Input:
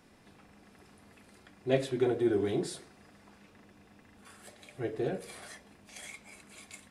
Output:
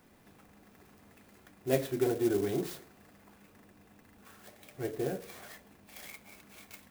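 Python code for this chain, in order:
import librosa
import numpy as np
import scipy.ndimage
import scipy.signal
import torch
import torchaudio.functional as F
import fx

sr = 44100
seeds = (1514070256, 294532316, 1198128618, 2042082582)

y = fx.clock_jitter(x, sr, seeds[0], jitter_ms=0.047)
y = F.gain(torch.from_numpy(y), -1.0).numpy()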